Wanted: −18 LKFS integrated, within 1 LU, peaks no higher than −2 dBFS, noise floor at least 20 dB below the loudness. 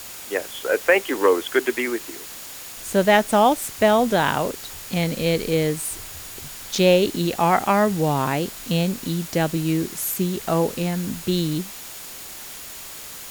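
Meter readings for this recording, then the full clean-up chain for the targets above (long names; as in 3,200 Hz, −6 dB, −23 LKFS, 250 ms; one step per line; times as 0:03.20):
interfering tone 6,900 Hz; level of the tone −48 dBFS; background noise floor −37 dBFS; target noise floor −42 dBFS; integrated loudness −21.5 LKFS; sample peak −3.5 dBFS; target loudness −18.0 LKFS
→ notch filter 6,900 Hz, Q 30
broadband denoise 6 dB, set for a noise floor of −37 dBFS
level +3.5 dB
brickwall limiter −2 dBFS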